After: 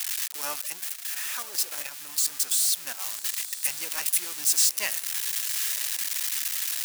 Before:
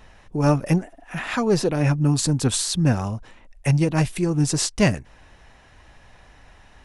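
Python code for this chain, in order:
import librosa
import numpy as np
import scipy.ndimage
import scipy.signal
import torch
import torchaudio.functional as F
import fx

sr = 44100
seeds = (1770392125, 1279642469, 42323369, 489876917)

y = x + 0.5 * 10.0 ** (-13.0 / 20.0) * np.diff(np.sign(x), prepend=np.sign(x[:1]))
y = scipy.signal.sosfilt(scipy.signal.butter(2, 1300.0, 'highpass', fs=sr, output='sos'), y)
y = fx.high_shelf(y, sr, hz=4400.0, db=2.0)
y = fx.level_steps(y, sr, step_db=9, at=(0.62, 3.06))
y = fx.echo_diffused(y, sr, ms=1015, feedback_pct=41, wet_db=-13.5)
y = F.gain(torch.from_numpy(y), -5.0).numpy()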